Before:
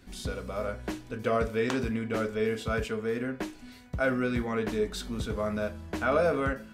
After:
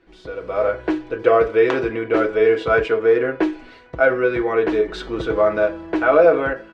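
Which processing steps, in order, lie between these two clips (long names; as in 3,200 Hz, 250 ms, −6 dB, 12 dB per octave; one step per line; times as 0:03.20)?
low-pass filter 2,600 Hz 12 dB per octave
low shelf with overshoot 270 Hz −7.5 dB, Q 3
comb filter 6.1 ms, depth 52%
automatic gain control gain up to 13.5 dB
every ending faded ahead of time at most 270 dB per second
level −1 dB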